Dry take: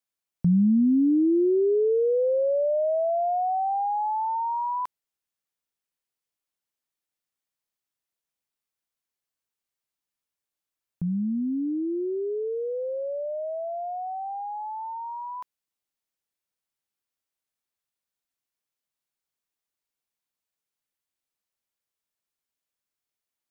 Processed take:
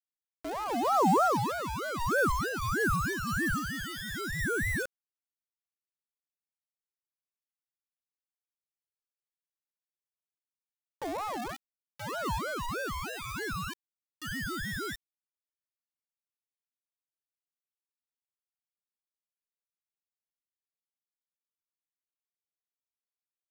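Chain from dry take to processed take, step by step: dynamic bell 170 Hz, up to +5 dB, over -35 dBFS, Q 0.96; wah-wah 0.7 Hz 350–1000 Hz, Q 2.1; word length cut 6-bit, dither none; ring modulator with a swept carrier 770 Hz, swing 40%, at 3.2 Hz

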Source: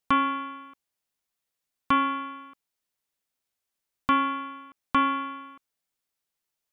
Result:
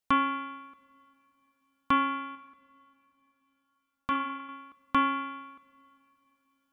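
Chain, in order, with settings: 2.35–4.49 s: flange 1.1 Hz, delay 1.1 ms, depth 4.3 ms, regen -75%; two-slope reverb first 0.6 s, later 4 s, from -18 dB, DRR 15 dB; trim -2.5 dB

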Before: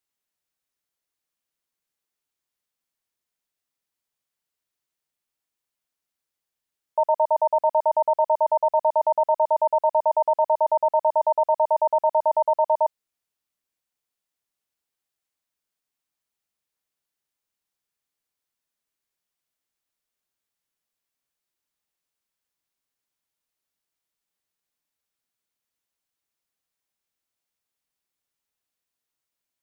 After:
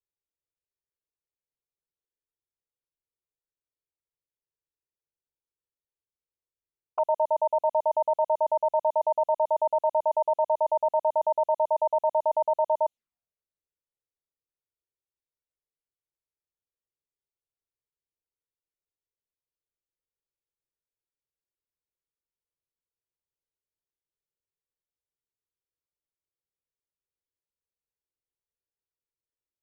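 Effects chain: level-controlled noise filter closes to 470 Hz, open at -19 dBFS; touch-sensitive flanger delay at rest 2.1 ms, full sweep at -21.5 dBFS; trim -1.5 dB

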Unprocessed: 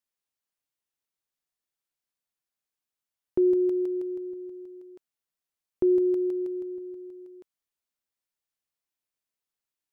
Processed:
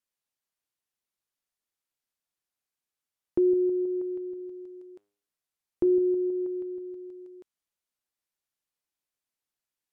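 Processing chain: low-pass that closes with the level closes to 520 Hz, closed at -24 dBFS; 4.37–6.47 s: de-hum 101.7 Hz, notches 38

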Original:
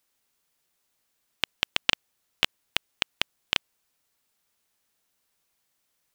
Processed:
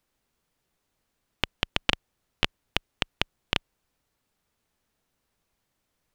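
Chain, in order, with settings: tilt EQ -2.5 dB/octave; trim +2 dB

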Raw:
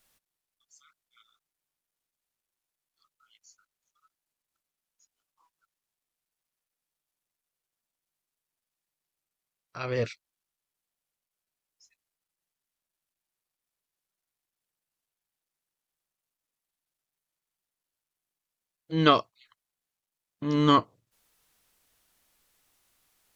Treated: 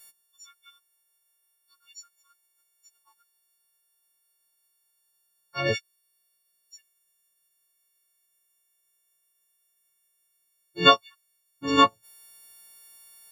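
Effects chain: partials quantised in pitch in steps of 4 st; plain phase-vocoder stretch 0.57×; trim +4.5 dB

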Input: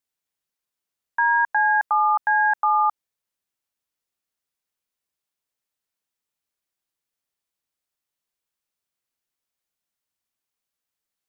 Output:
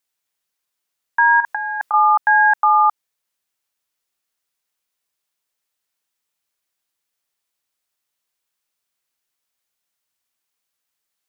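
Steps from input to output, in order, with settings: bass shelf 500 Hz -7 dB; 1.40–1.94 s: compressor with a negative ratio -27 dBFS, ratio -0.5; trim +7 dB

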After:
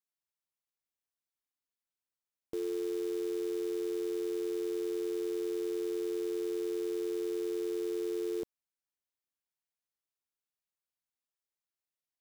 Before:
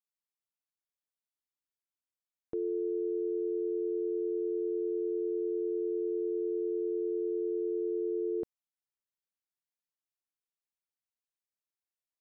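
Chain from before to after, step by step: short-mantissa float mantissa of 2-bit; trim -2 dB

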